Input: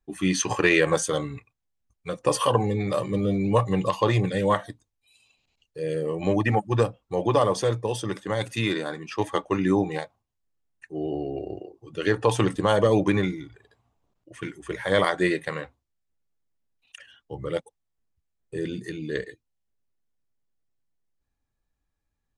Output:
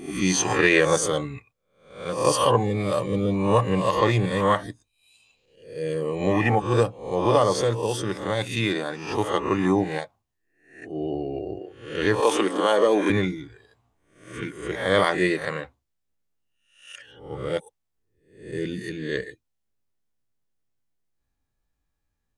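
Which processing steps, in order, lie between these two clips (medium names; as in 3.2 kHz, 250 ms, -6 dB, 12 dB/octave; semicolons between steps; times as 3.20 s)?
reverse spectral sustain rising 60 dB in 0.53 s; 12.20–13.10 s: high-pass 250 Hz 24 dB/octave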